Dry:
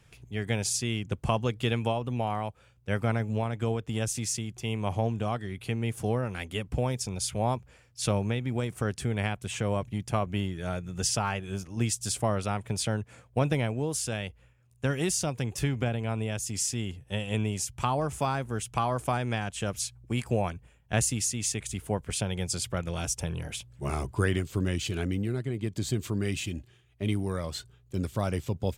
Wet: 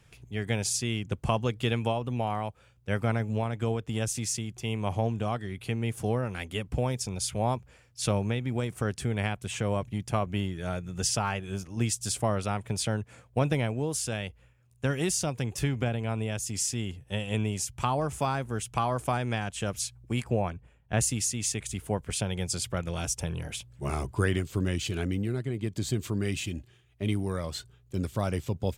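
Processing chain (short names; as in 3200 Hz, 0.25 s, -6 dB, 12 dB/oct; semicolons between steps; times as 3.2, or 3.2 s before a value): 20.23–21 high shelf 3500 Hz -10 dB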